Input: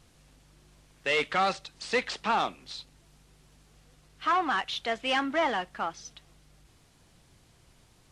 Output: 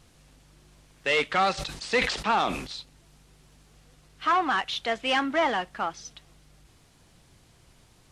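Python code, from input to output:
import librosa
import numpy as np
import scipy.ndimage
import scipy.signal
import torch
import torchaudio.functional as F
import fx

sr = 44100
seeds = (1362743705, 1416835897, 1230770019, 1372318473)

y = fx.sustainer(x, sr, db_per_s=64.0, at=(1.57, 2.66), fade=0.02)
y = y * librosa.db_to_amplitude(2.5)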